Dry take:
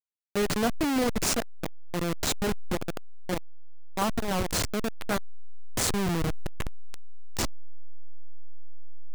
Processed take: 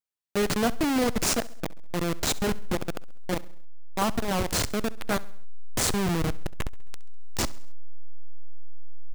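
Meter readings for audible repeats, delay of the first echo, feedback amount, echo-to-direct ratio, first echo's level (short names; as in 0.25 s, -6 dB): 3, 67 ms, 49%, -19.0 dB, -20.0 dB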